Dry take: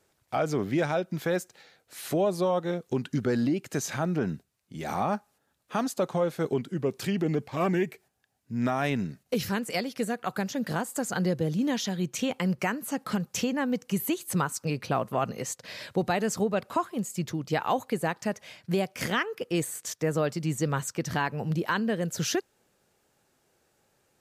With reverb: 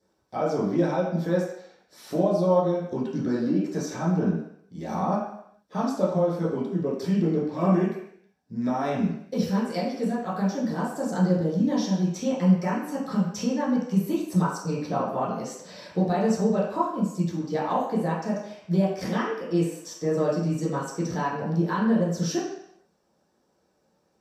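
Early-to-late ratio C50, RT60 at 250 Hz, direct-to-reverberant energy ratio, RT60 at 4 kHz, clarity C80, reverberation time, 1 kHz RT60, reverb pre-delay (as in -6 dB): 3.0 dB, 0.55 s, -8.5 dB, 0.70 s, 6.0 dB, 0.70 s, 0.75 s, 9 ms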